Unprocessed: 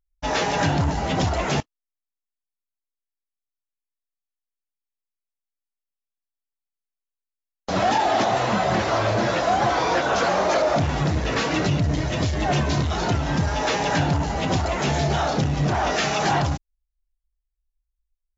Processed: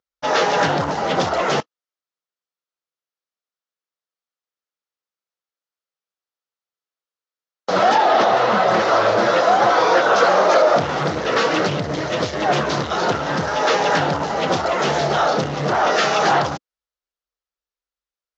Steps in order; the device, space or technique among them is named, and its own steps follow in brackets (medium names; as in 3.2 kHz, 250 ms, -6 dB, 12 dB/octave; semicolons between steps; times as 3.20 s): 7.95–8.68 s: low-pass 5.6 kHz 12 dB/octave; full-range speaker at full volume (loudspeaker Doppler distortion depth 0.24 ms; cabinet simulation 230–6300 Hz, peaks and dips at 270 Hz -5 dB, 500 Hz +6 dB, 1.3 kHz +6 dB, 2.4 kHz -3 dB); trim +4.5 dB